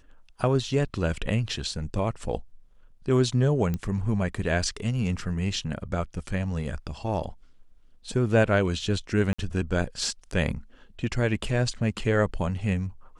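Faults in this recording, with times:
3.74 pop -17 dBFS
9.33–9.38 gap 55 ms

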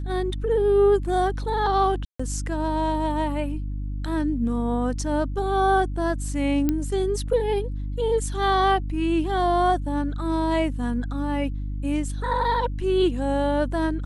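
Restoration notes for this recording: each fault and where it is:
hum 50 Hz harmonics 6 -29 dBFS
2.05–2.19 gap 0.145 s
6.69 pop -10 dBFS

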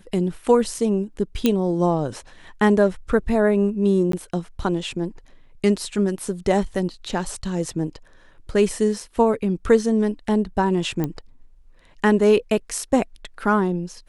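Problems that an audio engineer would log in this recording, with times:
1.46 pop -5 dBFS
4.12–4.13 gap 13 ms
11.04 pop -12 dBFS

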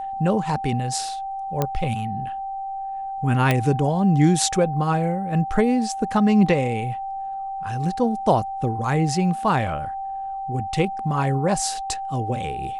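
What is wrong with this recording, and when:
tone 780 Hz -27 dBFS
1.62 pop -8 dBFS
3.51 pop -6 dBFS

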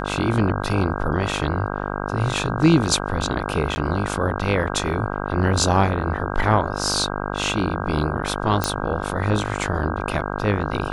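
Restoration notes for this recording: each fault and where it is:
buzz 50 Hz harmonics 32 -27 dBFS
3.75–3.76 gap 10 ms
8.64 pop -5 dBFS

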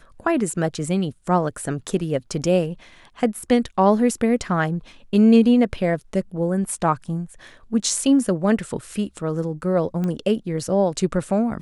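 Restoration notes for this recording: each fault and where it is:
10.04 pop -16 dBFS

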